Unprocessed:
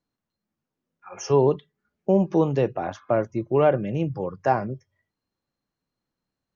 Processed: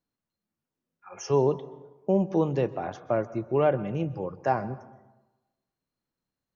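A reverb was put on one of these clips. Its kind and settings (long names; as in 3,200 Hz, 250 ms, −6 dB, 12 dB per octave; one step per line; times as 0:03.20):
dense smooth reverb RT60 1.1 s, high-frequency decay 0.55×, pre-delay 115 ms, DRR 17.5 dB
level −4 dB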